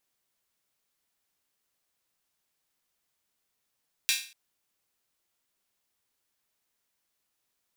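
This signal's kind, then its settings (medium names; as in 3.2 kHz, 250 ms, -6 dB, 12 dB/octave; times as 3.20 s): open hi-hat length 0.24 s, high-pass 2.6 kHz, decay 0.40 s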